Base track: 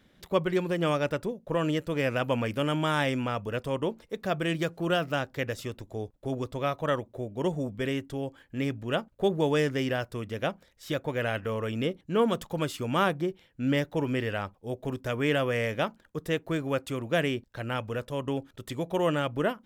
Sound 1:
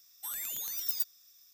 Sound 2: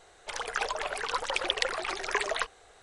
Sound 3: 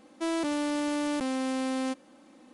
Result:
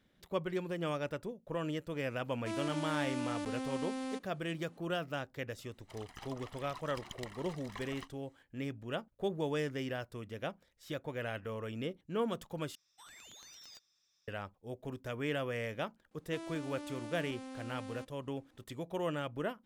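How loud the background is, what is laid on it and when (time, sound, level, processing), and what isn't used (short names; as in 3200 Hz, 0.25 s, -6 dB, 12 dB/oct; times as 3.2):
base track -9.5 dB
2.25 add 3 -9 dB
5.61 add 2 -17.5 dB + minimum comb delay 1 ms
12.75 replace with 1 -5.5 dB + air absorption 130 m
16.11 add 3 -16 dB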